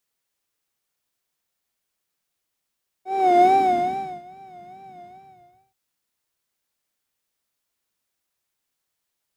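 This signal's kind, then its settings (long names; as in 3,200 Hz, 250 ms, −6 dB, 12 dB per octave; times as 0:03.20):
subtractive patch with vibrato F#5, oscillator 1 square, oscillator 2 saw, interval 0 semitones, sub −19 dB, noise −7 dB, filter bandpass, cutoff 100 Hz, Q 2.8, filter envelope 2 octaves, filter decay 1.09 s, filter sustain 40%, attack 400 ms, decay 0.77 s, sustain −23 dB, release 0.72 s, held 1.97 s, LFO 2.4 Hz, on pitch 87 cents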